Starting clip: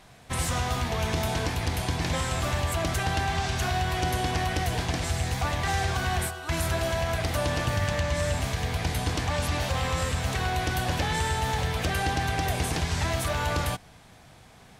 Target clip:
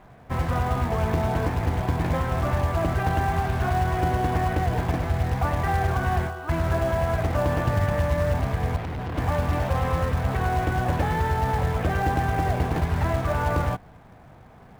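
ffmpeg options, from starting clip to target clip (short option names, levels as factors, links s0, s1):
-filter_complex "[0:a]lowpass=1400,asplit=2[s0][s1];[s1]acrusher=bits=3:mode=log:mix=0:aa=0.000001,volume=0.668[s2];[s0][s2]amix=inputs=2:normalize=0,asettb=1/sr,asplit=3[s3][s4][s5];[s3]atrim=end=8.764[s6];[s4]atrim=start=8.76:end=9.18,asetpts=PTS-STARTPTS,afade=t=in:d=0.004:c=qsin,afade=t=out:st=0.416:d=0.004:c=qsin,volume=26.6,asoftclip=hard,volume=0.0376[s7];[s5]atrim=start=9.176[s8];[s6][s7]acrossfade=d=0.004:c1=hsin:c2=qsin[s9];[s9][s8]acrossfade=d=0.004:c1=qsin:c2=hsin"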